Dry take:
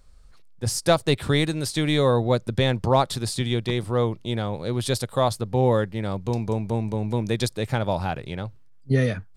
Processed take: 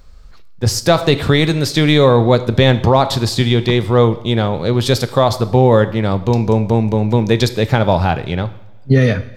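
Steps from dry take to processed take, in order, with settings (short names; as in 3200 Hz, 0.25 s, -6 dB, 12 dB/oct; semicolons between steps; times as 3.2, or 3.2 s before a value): bell 9400 Hz -14.5 dB 0.45 oct; two-slope reverb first 0.69 s, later 3.1 s, from -26 dB, DRR 12 dB; maximiser +12 dB; gain -1 dB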